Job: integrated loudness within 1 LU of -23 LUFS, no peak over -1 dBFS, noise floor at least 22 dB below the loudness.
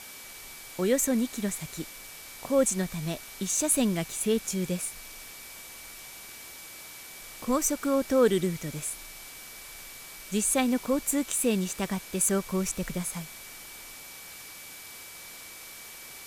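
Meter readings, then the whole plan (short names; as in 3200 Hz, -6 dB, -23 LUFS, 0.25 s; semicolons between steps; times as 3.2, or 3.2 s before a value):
steady tone 2300 Hz; tone level -50 dBFS; noise floor -45 dBFS; noise floor target -50 dBFS; loudness -28.0 LUFS; peak -10.5 dBFS; loudness target -23.0 LUFS
-> notch 2300 Hz, Q 30; denoiser 6 dB, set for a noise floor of -45 dBFS; gain +5 dB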